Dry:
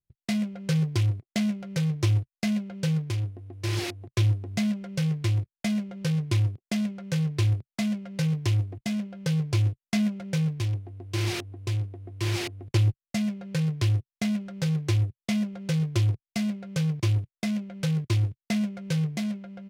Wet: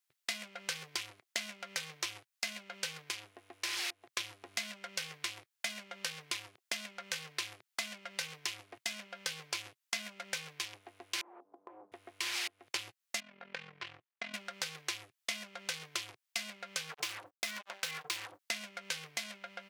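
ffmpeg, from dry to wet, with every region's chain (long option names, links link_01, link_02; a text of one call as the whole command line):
ffmpeg -i in.wav -filter_complex "[0:a]asettb=1/sr,asplit=3[link_01][link_02][link_03];[link_01]atrim=end=11.214[link_04];[link_02]atrim=start=11.21:end=11.92,asetpts=PTS-STARTPTS,afade=type=in:duration=0.004:curve=qsin,afade=type=out:start_time=0.706:duration=0.004:curve=qsin,asuperpass=centerf=430:order=8:qfactor=0.55,acompressor=threshold=-43dB:ratio=3:attack=3.2:release=140:knee=1:detection=peak[link_05];[link_03]atrim=start=11.916[link_06];[link_04][link_05]acrossfade=duration=0.004:curve1=hsin:curve2=qsin[link_07];[link_07][link_06]acrossfade=duration=0.004:curve1=qsin:curve2=hsin,asettb=1/sr,asplit=3[link_08][link_09][link_10];[link_08]atrim=end=13.204[link_11];[link_09]atrim=start=13.2:end=14.34,asetpts=PTS-STARTPTS,afade=type=in:duration=0.004:curve=qsin,afade=type=out:start_time=1.136:duration=0.004:curve=qsin,lowpass=2400,acompressor=threshold=-32dB:ratio=2.5:attack=3.2:release=140:knee=1:detection=peak,tremolo=f=43:d=0.788[link_12];[link_10]atrim=start=14.336[link_13];[link_11][link_12]acrossfade=duration=0.004:curve1=hsin:curve2=qsin[link_14];[link_14][link_13]acrossfade=duration=0.004:curve1=qsin:curve2=hsin,asettb=1/sr,asplit=3[link_15][link_16][link_17];[link_15]atrim=end=16.904[link_18];[link_16]atrim=start=16.9:end=18.39,asetpts=PTS-STARTPTS,afade=type=in:duration=0.004:curve=qsin,afade=type=out:start_time=1.486:duration=0.004:curve=qsin,bandreject=frequency=50:width_type=h:width=6,bandreject=frequency=100:width_type=h:width=6,bandreject=frequency=150:width_type=h:width=6,bandreject=frequency=200:width_type=h:width=6,bandreject=frequency=250:width_type=h:width=6,bandreject=frequency=300:width_type=h:width=6,bandreject=frequency=350:width_type=h:width=6,acrusher=bits=5:mix=0:aa=0.5[link_19];[link_17]atrim=start=18.386[link_20];[link_18][link_19]acrossfade=duration=0.004:curve1=hsin:curve2=qsin[link_21];[link_21][link_20]acrossfade=duration=0.004:curve1=qsin:curve2=hsin,highpass=1200,acompressor=threshold=-49dB:ratio=3,volume=11dB" out.wav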